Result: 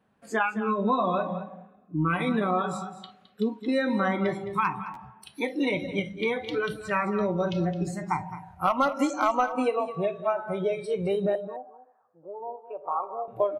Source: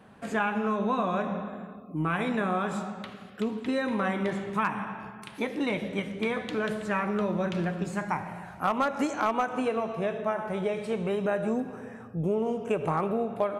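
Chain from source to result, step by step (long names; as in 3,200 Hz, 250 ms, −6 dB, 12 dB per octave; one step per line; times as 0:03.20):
noise reduction from a noise print of the clip's start 19 dB
0:11.35–0:13.28: flat-topped band-pass 880 Hz, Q 1.6
on a send: single-tap delay 214 ms −13.5 dB
on the sum: buffer that repeats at 0:04.93, samples 512, times 2
level +3.5 dB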